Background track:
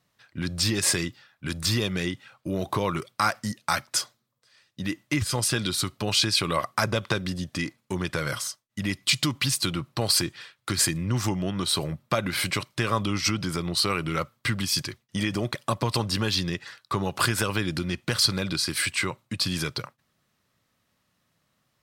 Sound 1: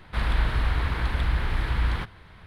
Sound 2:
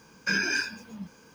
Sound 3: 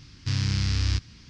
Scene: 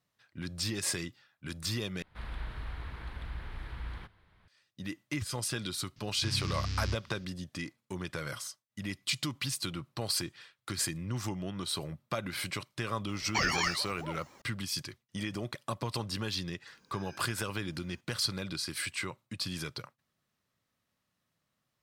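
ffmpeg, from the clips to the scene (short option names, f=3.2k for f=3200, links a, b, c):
-filter_complex "[2:a]asplit=2[a][b];[0:a]volume=-9.5dB[c];[a]aeval=exprs='val(0)*sin(2*PI*480*n/s+480*0.7/4*sin(2*PI*4*n/s))':c=same[d];[b]acompressor=threshold=-38dB:ratio=6:attack=3.2:release=140:knee=1:detection=peak[e];[c]asplit=2[f][g];[f]atrim=end=2.024[h];[1:a]atrim=end=2.46,asetpts=PTS-STARTPTS,volume=-16dB[i];[g]atrim=start=4.476[j];[3:a]atrim=end=1.29,asetpts=PTS-STARTPTS,volume=-9.5dB,afade=t=in:d=0.004:c=hsin,afade=t=out:st=1.286:d=0.004:c=hsin,adelay=5960[k];[d]atrim=end=1.34,asetpts=PTS-STARTPTS,afade=t=in:d=0.004:c=hsin,afade=t=out:st=1.336:d=0.004:c=hsin,adelay=13080[l];[e]atrim=end=1.34,asetpts=PTS-STARTPTS,volume=-13dB,afade=t=in:d=0.004:c=hsin,afade=t=out:st=1.336:d=0.004:c=hsin,adelay=16670[m];[h][i]acrossfade=d=0.004:c1=hsin:c2=hsin[n];[n][j]acrossfade=d=0.004:c1=hsin:c2=hsin[o];[o][k][l][m]amix=inputs=4:normalize=0"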